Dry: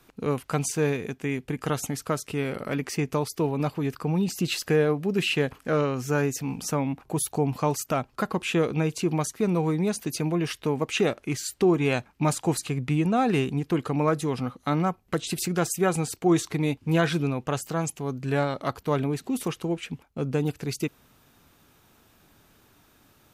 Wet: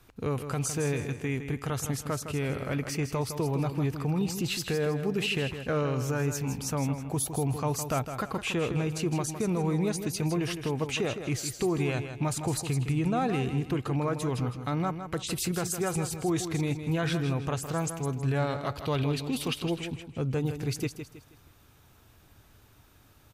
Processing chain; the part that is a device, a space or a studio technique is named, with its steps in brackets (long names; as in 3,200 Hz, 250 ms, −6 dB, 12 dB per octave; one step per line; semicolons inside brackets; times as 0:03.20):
car stereo with a boomy subwoofer (low shelf with overshoot 140 Hz +7 dB, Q 1.5; brickwall limiter −18 dBFS, peak gain reduction 6.5 dB)
0:18.76–0:19.69: flat-topped bell 3,500 Hz +9.5 dB 1.2 octaves
repeating echo 160 ms, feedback 34%, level −9 dB
level −2 dB